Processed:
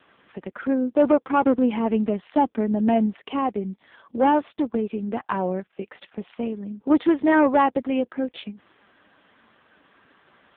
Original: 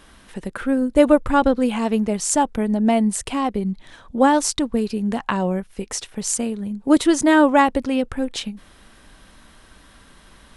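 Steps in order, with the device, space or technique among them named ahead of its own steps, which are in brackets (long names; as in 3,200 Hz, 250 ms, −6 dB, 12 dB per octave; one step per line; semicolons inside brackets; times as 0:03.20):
0:01.44–0:03.06: dynamic equaliser 260 Hz, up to +4 dB, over −31 dBFS, Q 1.7
telephone (band-pass filter 250–3,400 Hz; soft clipping −9.5 dBFS, distortion −16 dB; AMR narrowband 5.15 kbit/s 8,000 Hz)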